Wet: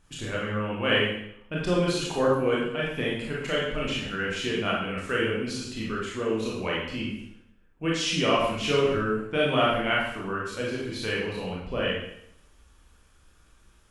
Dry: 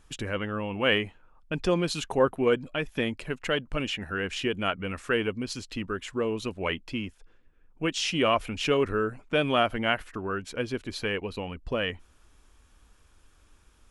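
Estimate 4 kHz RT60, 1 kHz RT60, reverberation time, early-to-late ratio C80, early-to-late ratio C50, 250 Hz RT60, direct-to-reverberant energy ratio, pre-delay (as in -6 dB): 0.70 s, 0.70 s, 0.70 s, 4.5 dB, 1.0 dB, 0.80 s, -5.0 dB, 22 ms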